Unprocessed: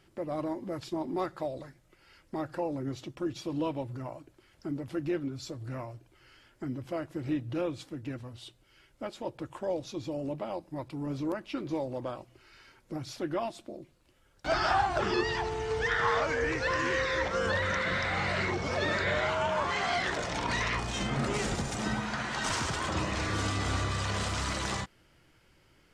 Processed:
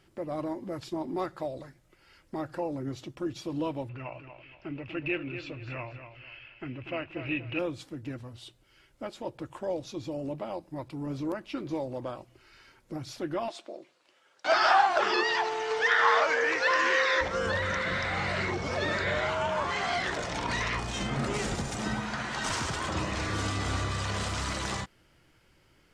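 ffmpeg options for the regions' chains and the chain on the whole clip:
-filter_complex "[0:a]asettb=1/sr,asplit=3[a][b][c];[a]atrim=end=3.894[d];[b]atrim=start=3.89:end=7.59,asetpts=PTS-STARTPTS,afade=t=in:d=0.004:c=qsin,afade=t=out:st=3.696:d=0.004:c=qsin,lowpass=f=2.6k:t=q:w=13,equalizer=f=220:w=1.2:g=-5.5,aecho=1:1:239|478|717:0.335|0.1|0.0301,atrim=end_sample=163170[e];[c]atrim=start=7.586[f];[d][e]acrossfade=d=0.004:c1=hsin:c2=qsin[g];[g][f]acrossfade=d=0.004:c1=qsin:c2=hsin,asettb=1/sr,asplit=3[h][i][j];[h]atrim=end=13.484[k];[i]atrim=start=13.48:end=17.21,asetpts=PTS-STARTPTS,afade=t=in:d=0.004:c=qsin,afade=t=out:st=3.726:d=0.004:c=qsin,acontrast=51,highpass=540,lowpass=6.4k[l];[j]atrim=start=17.206[m];[k][l]acrossfade=d=0.004:c1=hsin:c2=qsin[n];[n][m]acrossfade=d=0.004:c1=qsin:c2=hsin"

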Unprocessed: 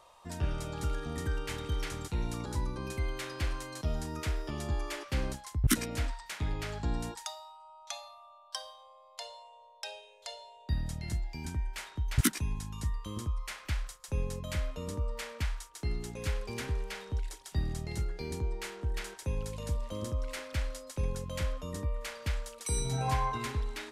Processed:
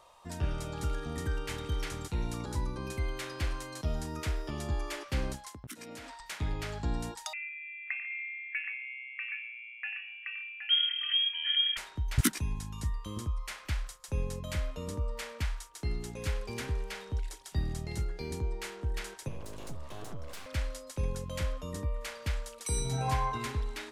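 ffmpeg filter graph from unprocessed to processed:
-filter_complex "[0:a]asettb=1/sr,asplit=3[a][b][c];[a]atrim=end=5.494[d];[b]atrim=start=5.49:end=6.2,asetpts=PTS-STARTPTS,afade=t=in:d=0.004:c=qsin,afade=t=out:st=0.706:d=0.004:c=qsin,highpass=200,acompressor=threshold=-41dB:ratio=10:attack=3.2:release=140:knee=1:detection=peak[e];[c]atrim=start=6.196[f];[d][e]acrossfade=d=0.004:c1=hsin:c2=qsin[g];[g][f]acrossfade=d=0.004:c1=qsin:c2=hsin,asettb=1/sr,asplit=3[h][i][j];[h]atrim=end=7.334[k];[i]atrim=start=7.33:end=11.77,asetpts=PTS-STARTPTS,afade=t=in:d=0.004:c=qsin,afade=t=out:st=4.436:d=0.004:c=qsin,lowpass=f=2.8k:t=q:w=0.5098,lowpass=f=2.8k:t=q:w=0.6013,lowpass=f=2.8k:t=q:w=0.9,lowpass=f=2.8k:t=q:w=2.563,afreqshift=-3300,highpass=f=1.9k:t=q:w=7.4,aecho=1:1:93|119|144|771:0.282|0.126|0.126|0.473,atrim=end_sample=195804[l];[j]atrim=start=11.766[m];[k][l]acrossfade=d=0.004:c1=hsin:c2=qsin[n];[n][m]acrossfade=d=0.004:c1=qsin:c2=hsin,asettb=1/sr,asplit=3[o][p][q];[o]atrim=end=19.284[r];[p]atrim=start=19.28:end=20.46,asetpts=PTS-STARTPTS,afade=t=in:d=0.004:c=qsin,afade=t=out:st=1.176:d=0.004:c=qsin,acompressor=threshold=-38dB:ratio=2:attack=3.2:release=140:knee=1:detection=peak,aeval=exprs='abs(val(0))':c=same[s];[q]atrim=start=20.456[t];[r][s]acrossfade=d=0.004:c1=hsin:c2=qsin[u];[u][t]acrossfade=d=0.004:c1=qsin:c2=hsin"

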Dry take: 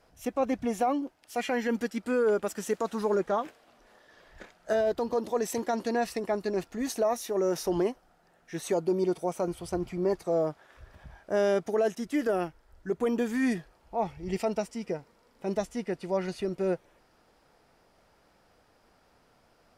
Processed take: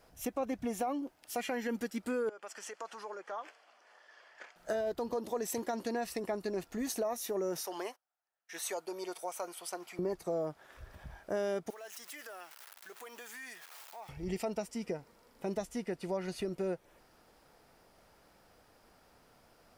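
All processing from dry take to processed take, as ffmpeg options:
-filter_complex "[0:a]asettb=1/sr,asplit=3[a][b][c];[a]atrim=end=2.294[d];[b]atrim=start=2.29:end=4.56,asetpts=PTS-STARTPTS,afade=t=in:d=0.004:c=qsin,afade=t=out:st=2.266:d=0.004:c=qsin,bandreject=f=3.8k:w=5.7,acompressor=threshold=-36dB:ratio=2.5:attack=3.2:release=140:knee=1:detection=peak,highpass=750,lowpass=5.5k[e];[c]atrim=start=4.556[f];[d][e]acrossfade=d=0.004:c1=hsin:c2=qsin[g];[g][f]acrossfade=d=0.004:c1=qsin:c2=hsin,asettb=1/sr,asplit=3[h][i][j];[h]atrim=end=7.614[k];[i]atrim=start=7.61:end=9.99,asetpts=PTS-STARTPTS,afade=t=in:d=0.004:c=qsin,afade=t=out:st=2.376:d=0.004:c=qsin,highpass=810,agate=range=-26dB:threshold=-56dB:ratio=16:release=100:detection=peak[l];[j]atrim=start=9.986[m];[k][l]acrossfade=d=0.004:c1=hsin:c2=qsin[n];[n][m]acrossfade=d=0.004:c1=qsin:c2=hsin,asettb=1/sr,asplit=3[o][p][q];[o]atrim=end=11.704[r];[p]atrim=start=11.7:end=14.09,asetpts=PTS-STARTPTS,afade=t=in:d=0.004:c=qsin,afade=t=out:st=2.386:d=0.004:c=qsin,aeval=exprs='val(0)+0.5*0.00708*sgn(val(0))':c=same,highpass=1.1k,acompressor=threshold=-49dB:ratio=2.5:attack=3.2:release=140:knee=1:detection=peak[s];[q]atrim=start=14.086[t];[r][s]acrossfade=d=0.004:c1=hsin:c2=qsin[u];[u][t]acrossfade=d=0.004:c1=qsin:c2=hsin,highshelf=f=11k:g=11,acompressor=threshold=-35dB:ratio=2.5"

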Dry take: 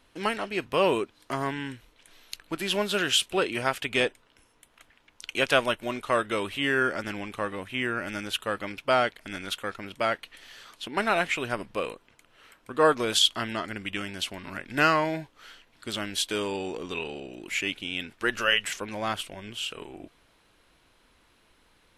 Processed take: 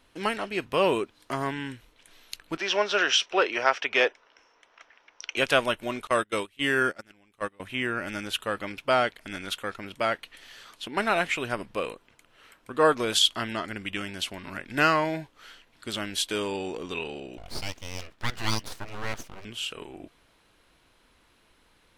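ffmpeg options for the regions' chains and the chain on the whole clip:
-filter_complex "[0:a]asettb=1/sr,asplit=3[a][b][c];[a]atrim=end=2.574[d];[b]atrim=start=2.57:end=5.37,asetpts=PTS-STARTPTS,afade=t=in:d=0.004:c=qsin,afade=t=out:st=2.796:d=0.004:c=qsin,acrossover=split=390 2700:gain=0.0794 1 0.1[e][f][g];[e][f][g]amix=inputs=3:normalize=0,acontrast=32,lowpass=f=5.7k:t=q:w=12[h];[c]atrim=start=5.366[i];[d][h]acrossfade=d=0.004:c1=hsin:c2=qsin[j];[j][i]acrossfade=d=0.004:c1=qsin:c2=hsin,asettb=1/sr,asplit=3[k][l][m];[k]atrim=end=6.074[n];[l]atrim=start=6.07:end=7.6,asetpts=PTS-STARTPTS,afade=t=in:d=0.004:c=qsin,afade=t=out:st=1.526:d=0.004:c=qsin,agate=range=-26dB:threshold=-30dB:ratio=16:release=100:detection=peak,highshelf=f=5.3k:g=7[o];[m]atrim=start=7.596[p];[n][o]acrossfade=d=0.004:c1=hsin:c2=qsin[q];[q][p]acrossfade=d=0.004:c1=qsin:c2=hsin,asettb=1/sr,asplit=3[r][s][t];[r]atrim=end=17.374[u];[s]atrim=start=17.37:end=19.45,asetpts=PTS-STARTPTS,afade=t=in:d=0.004:c=qsin,afade=t=out:st=2.076:d=0.004:c=qsin,highshelf=f=3.9k:g=-9.5,aeval=exprs='abs(val(0))':c=same[v];[t]atrim=start=19.446[w];[u][v]acrossfade=d=0.004:c1=hsin:c2=qsin[x];[x][w]acrossfade=d=0.004:c1=qsin:c2=hsin"

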